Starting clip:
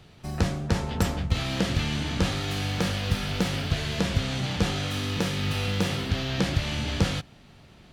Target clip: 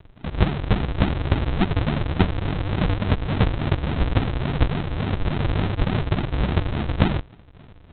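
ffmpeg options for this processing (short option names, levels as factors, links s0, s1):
-af "lowshelf=f=200:g=-3.5,aresample=8000,acrusher=samples=28:mix=1:aa=0.000001:lfo=1:lforange=28:lforate=3.5,aresample=44100,volume=2.37"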